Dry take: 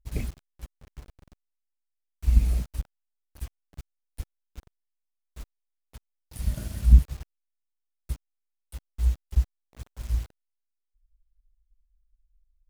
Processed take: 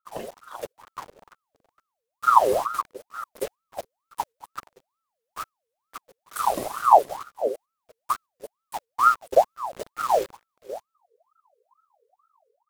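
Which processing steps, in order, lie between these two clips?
reverse delay 0.36 s, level -14 dB; gate -44 dBFS, range -6 dB; low shelf 100 Hz -8.5 dB; AGC gain up to 14 dB; ring modulator with a swept carrier 890 Hz, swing 50%, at 2.2 Hz

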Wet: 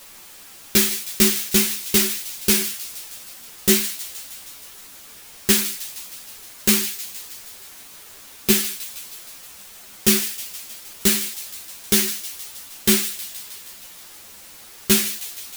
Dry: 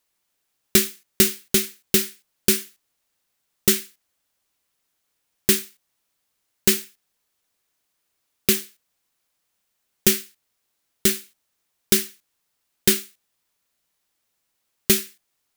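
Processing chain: power-law curve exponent 0.5; thin delay 0.157 s, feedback 70%, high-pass 2600 Hz, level -12.5 dB; ensemble effect; gain -1 dB

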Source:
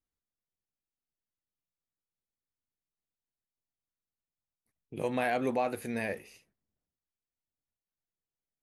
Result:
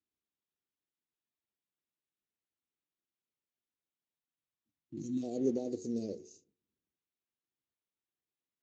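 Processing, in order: Chebyshev band-stop 380–5800 Hz, order 3; bell 110 Hz -13.5 dB 2.5 oct; de-hum 91.17 Hz, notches 16; spectral gain 4.14–5.23, 350–1400 Hz -28 dB; gain +8.5 dB; Speex 17 kbps 16000 Hz

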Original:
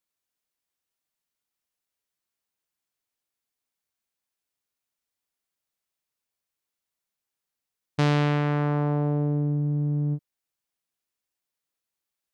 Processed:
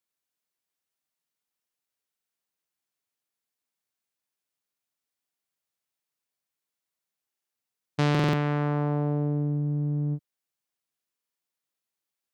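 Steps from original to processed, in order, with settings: HPF 89 Hz; stuck buffer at 2.07/7.28/8.1/11.13, samples 2048, times 4; gain -1.5 dB

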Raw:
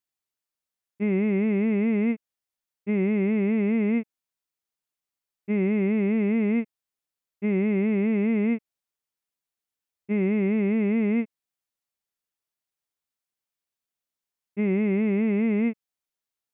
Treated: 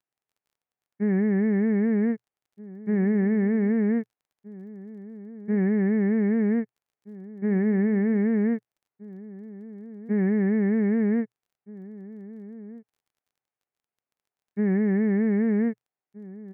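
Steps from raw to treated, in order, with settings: formant shift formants -3 st; speaker cabinet 110–2300 Hz, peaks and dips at 120 Hz +9 dB, 430 Hz +6 dB, 770 Hz +7 dB; outdoor echo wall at 270 m, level -18 dB; crackle 22/s -58 dBFS

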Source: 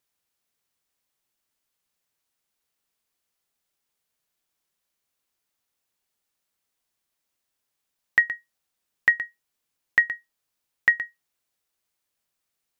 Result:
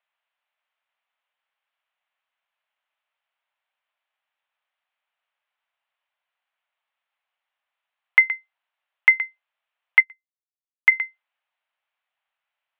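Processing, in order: mistuned SSB +180 Hz 440–3000 Hz; 10–10.92 upward expander 2.5:1, over -35 dBFS; gain +4.5 dB

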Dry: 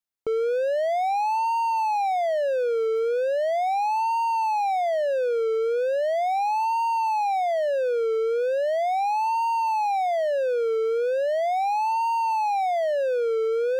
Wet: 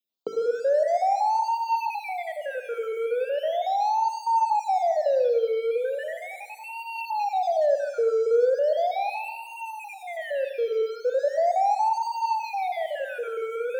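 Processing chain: random spectral dropouts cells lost 33%; steep high-pass 170 Hz; notches 50/100/150/200/250/300/350/400/450 Hz; in parallel at -0.5 dB: limiter -29 dBFS, peak gain reduction 11.5 dB; on the sum: phaser stages 4, 0.28 Hz, lowest notch 760–3000 Hz; on a send at -7 dB: reverb RT60 1.0 s, pre-delay 53 ms

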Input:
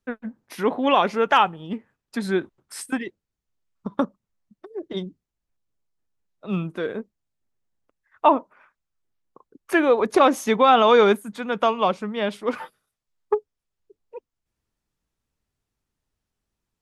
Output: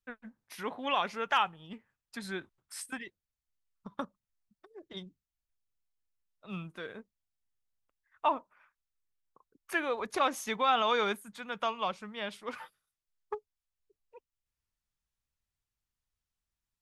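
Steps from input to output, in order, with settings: bell 330 Hz -11.5 dB 2.6 oct; gain -6.5 dB

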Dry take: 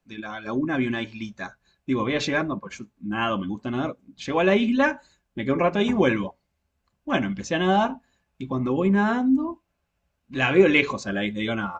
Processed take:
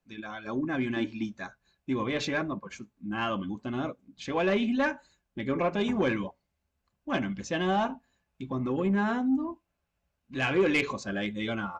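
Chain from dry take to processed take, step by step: 0.96–1.38 bell 290 Hz +14 dB 0.67 oct; soft clip -12.5 dBFS, distortion -17 dB; gain -5 dB

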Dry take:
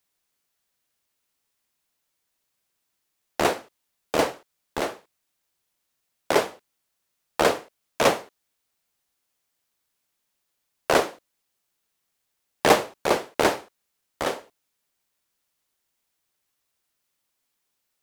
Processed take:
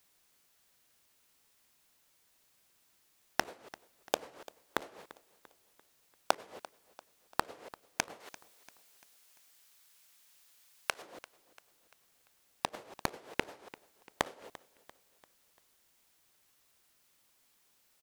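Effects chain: 8.2–11.02 tilt shelf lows -6.5 dB, about 840 Hz; negative-ratio compressor -22 dBFS, ratio -0.5; flipped gate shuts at -16 dBFS, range -30 dB; feedback echo 0.343 s, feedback 46%, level -19 dB; gain +4 dB

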